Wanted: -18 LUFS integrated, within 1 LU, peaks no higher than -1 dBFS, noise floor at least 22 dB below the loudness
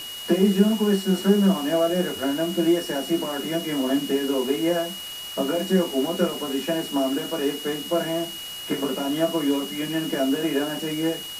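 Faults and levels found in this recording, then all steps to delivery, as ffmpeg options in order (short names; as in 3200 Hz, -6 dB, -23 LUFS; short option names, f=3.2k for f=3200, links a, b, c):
steady tone 2900 Hz; tone level -34 dBFS; noise floor -35 dBFS; noise floor target -46 dBFS; loudness -24.0 LUFS; peak -5.0 dBFS; loudness target -18.0 LUFS
-> -af "bandreject=f=2.9k:w=30"
-af "afftdn=nr=11:nf=-35"
-af "volume=6dB,alimiter=limit=-1dB:level=0:latency=1"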